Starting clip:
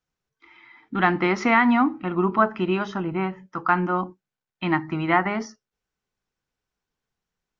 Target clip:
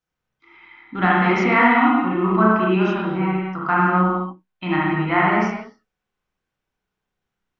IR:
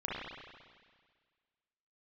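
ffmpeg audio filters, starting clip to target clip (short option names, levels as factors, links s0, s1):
-filter_complex "[1:a]atrim=start_sample=2205,afade=t=out:st=0.34:d=0.01,atrim=end_sample=15435[s0];[0:a][s0]afir=irnorm=-1:irlink=0"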